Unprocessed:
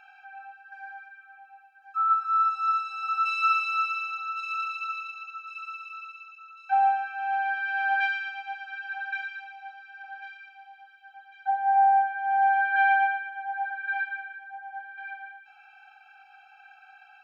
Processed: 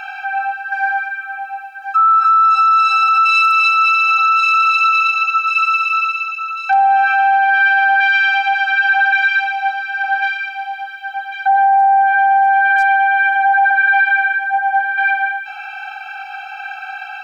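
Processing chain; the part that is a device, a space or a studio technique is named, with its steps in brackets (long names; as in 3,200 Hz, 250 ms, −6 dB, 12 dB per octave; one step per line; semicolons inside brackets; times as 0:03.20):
loud club master (downward compressor 2 to 1, threshold −26 dBFS, peak gain reduction 5 dB; hard clipping −19.5 dBFS, distortion −41 dB; boost into a limiter +30.5 dB)
level −6 dB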